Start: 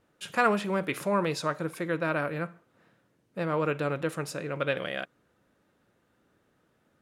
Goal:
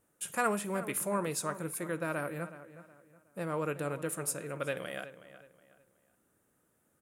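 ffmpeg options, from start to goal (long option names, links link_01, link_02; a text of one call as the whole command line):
ffmpeg -i in.wav -filter_complex "[0:a]highshelf=frequency=6400:width_type=q:width=1.5:gain=14,asplit=2[link_01][link_02];[link_02]adelay=369,lowpass=frequency=3400:poles=1,volume=-14dB,asplit=2[link_03][link_04];[link_04]adelay=369,lowpass=frequency=3400:poles=1,volume=0.34,asplit=2[link_05][link_06];[link_06]adelay=369,lowpass=frequency=3400:poles=1,volume=0.34[link_07];[link_01][link_03][link_05][link_07]amix=inputs=4:normalize=0,volume=-6dB" out.wav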